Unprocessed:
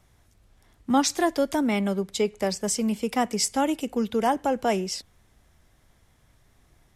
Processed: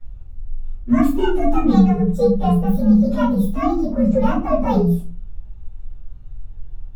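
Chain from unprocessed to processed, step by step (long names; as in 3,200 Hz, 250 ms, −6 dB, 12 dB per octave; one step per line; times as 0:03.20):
partials spread apart or drawn together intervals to 126%
spectral tilt −3.5 dB per octave
rectangular room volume 140 cubic metres, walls furnished, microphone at 4.4 metres
level −4 dB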